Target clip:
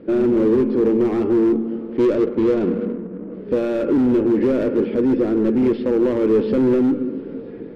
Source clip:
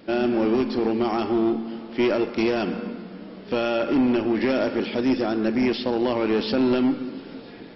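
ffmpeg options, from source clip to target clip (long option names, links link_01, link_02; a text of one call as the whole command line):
ffmpeg -i in.wav -filter_complex "[0:a]lowpass=1600,volume=21.5dB,asoftclip=hard,volume=-21.5dB,lowshelf=frequency=580:width_type=q:width=3:gain=6,asettb=1/sr,asplit=3[link_01][link_02][link_03];[link_01]atrim=end=1.974[link_04];[link_02]atrim=start=1.97:end=3.34,asetpts=PTS-STARTPTS,afade=type=in:duration=0.004:curve=qsin,afade=type=out:start_time=1.366:duration=0.004:curve=qsin,adynamicsmooth=sensitivity=2.5:basefreq=670[link_05];[link_03]atrim=start=3.336[link_06];[link_04][link_05]acrossfade=duration=0.004:curve1=hsin:curve2=qsin[link_07];[link_07][link_06]acrossfade=duration=0.004:curve1=qsin:curve2=hsin" out.wav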